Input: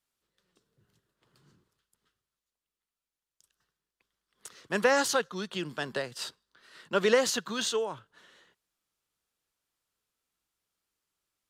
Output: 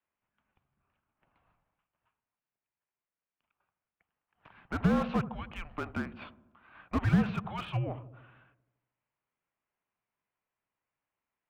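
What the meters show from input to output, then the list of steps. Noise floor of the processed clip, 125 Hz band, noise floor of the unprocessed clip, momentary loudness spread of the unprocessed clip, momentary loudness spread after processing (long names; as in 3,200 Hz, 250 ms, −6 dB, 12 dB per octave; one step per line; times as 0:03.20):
below −85 dBFS, +13.5 dB, below −85 dBFS, 13 LU, 14 LU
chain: delay with a low-pass on its return 79 ms, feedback 61%, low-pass 700 Hz, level −10.5 dB
single-sideband voice off tune −320 Hz 400–2,800 Hz
slew-rate limiting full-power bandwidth 29 Hz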